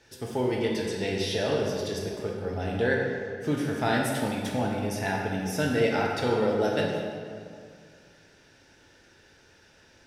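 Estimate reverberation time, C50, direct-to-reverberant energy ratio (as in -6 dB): 2.1 s, 1.0 dB, -2.0 dB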